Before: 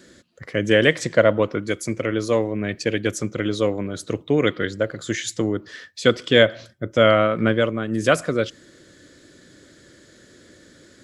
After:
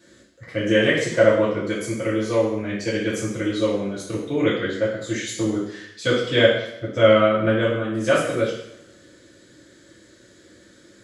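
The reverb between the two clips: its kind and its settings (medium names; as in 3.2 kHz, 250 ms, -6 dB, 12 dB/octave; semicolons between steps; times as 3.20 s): two-slope reverb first 0.74 s, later 2 s, from -24 dB, DRR -8.5 dB; trim -10 dB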